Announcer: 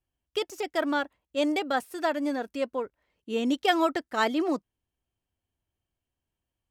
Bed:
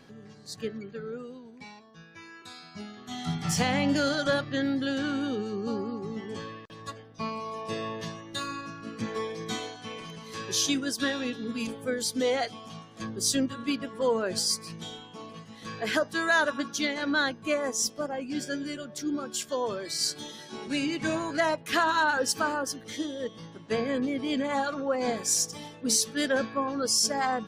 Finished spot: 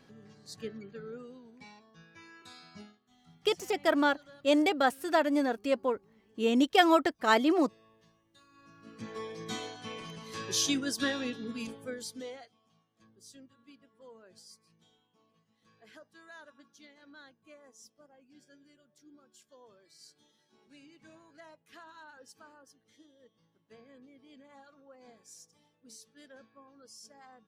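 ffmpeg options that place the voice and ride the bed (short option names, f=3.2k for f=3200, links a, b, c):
-filter_complex "[0:a]adelay=3100,volume=1dB[a];[1:a]volume=20dB,afade=t=out:st=2.74:d=0.25:silence=0.0749894,afade=t=in:st=8.51:d=1.31:silence=0.0501187,afade=t=out:st=11.11:d=1.38:silence=0.0562341[b];[a][b]amix=inputs=2:normalize=0"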